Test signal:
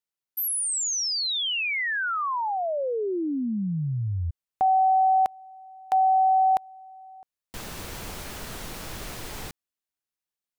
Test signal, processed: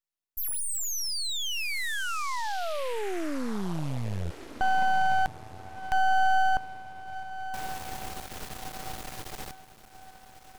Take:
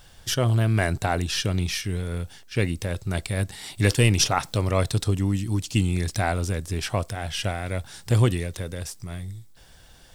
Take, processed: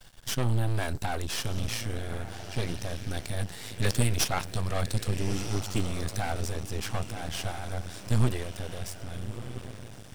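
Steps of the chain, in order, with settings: diffused feedback echo 1.284 s, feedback 41%, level -14 dB; half-wave rectifier

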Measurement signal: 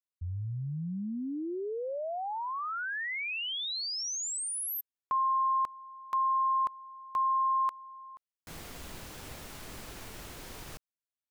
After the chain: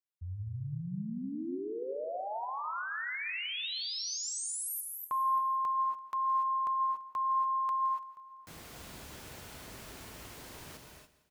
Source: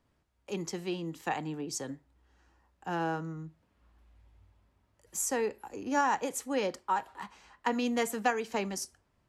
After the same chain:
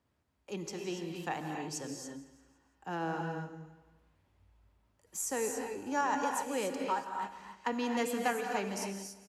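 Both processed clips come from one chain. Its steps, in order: HPF 49 Hz; feedback echo 0.169 s, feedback 46%, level -16.5 dB; non-linear reverb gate 0.31 s rising, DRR 3 dB; gain -4 dB

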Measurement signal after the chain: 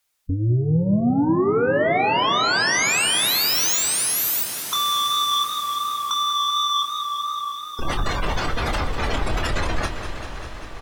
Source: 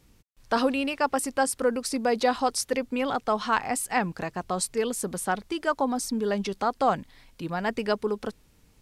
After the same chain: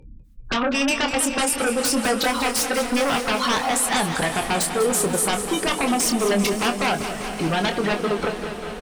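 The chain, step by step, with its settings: spectral gate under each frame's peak -15 dB strong; bell 200 Hz -9.5 dB 2.8 oct; compressor 3:1, threshold -34 dBFS; sine folder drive 15 dB, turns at -19.5 dBFS; doubler 25 ms -7.5 dB; diffused feedback echo 0.544 s, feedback 66%, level -14 dB; warbling echo 0.197 s, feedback 75%, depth 102 cents, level -10.5 dB; gain +1 dB

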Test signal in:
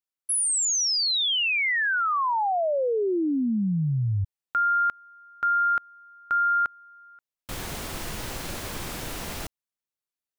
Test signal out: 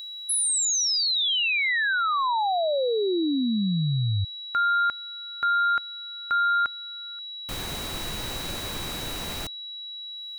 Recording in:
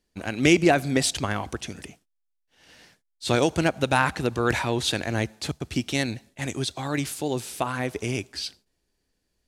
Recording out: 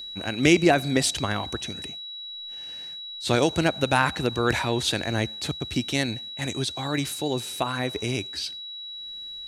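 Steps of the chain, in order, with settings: upward compressor, threshold -47 dBFS; whine 3900 Hz -35 dBFS

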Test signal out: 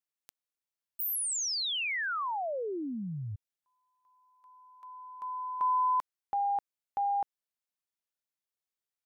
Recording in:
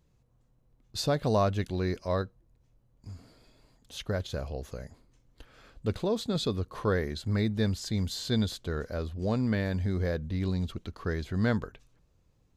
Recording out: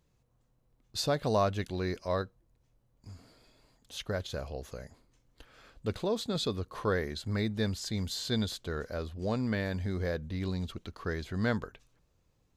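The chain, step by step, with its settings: low shelf 360 Hz -5 dB

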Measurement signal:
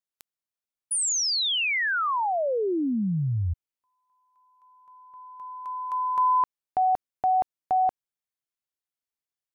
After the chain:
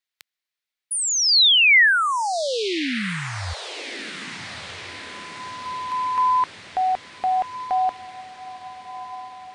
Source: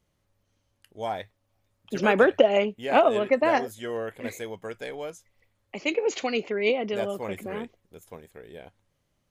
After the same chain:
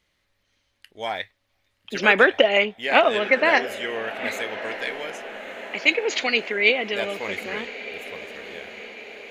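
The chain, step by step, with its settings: graphic EQ 125/2000/4000 Hz -8/+11/+9 dB; on a send: diffused feedback echo 1.253 s, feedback 61%, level -14.5 dB

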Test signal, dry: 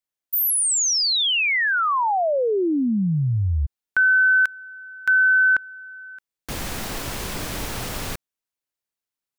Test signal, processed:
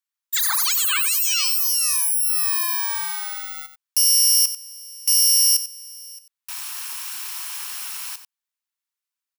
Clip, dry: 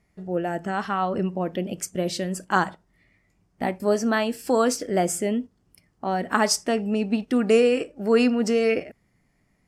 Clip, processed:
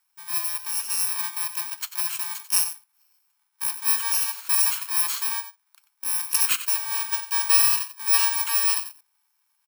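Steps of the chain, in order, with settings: FFT order left unsorted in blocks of 64 samples; steep high-pass 890 Hz 48 dB/oct; echo 92 ms -12 dB

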